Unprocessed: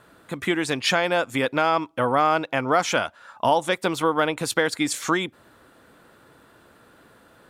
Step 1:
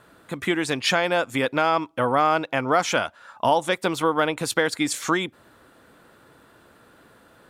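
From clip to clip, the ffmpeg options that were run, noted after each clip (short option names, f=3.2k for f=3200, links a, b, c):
-af anull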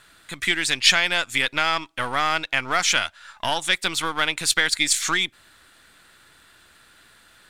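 -af "aeval=exprs='if(lt(val(0),0),0.708*val(0),val(0))':c=same,equalizer=f=125:t=o:w=1:g=-7,equalizer=f=250:t=o:w=1:g=-8,equalizer=f=500:t=o:w=1:g=-11,equalizer=f=1k:t=o:w=1:g=-5,equalizer=f=2k:t=o:w=1:g=4,equalizer=f=4k:t=o:w=1:g=6,equalizer=f=8k:t=o:w=1:g=6,volume=3dB"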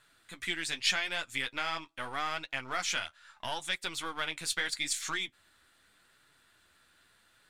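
-af "flanger=delay=6.4:depth=6.5:regen=-39:speed=0.8:shape=triangular,volume=-8.5dB"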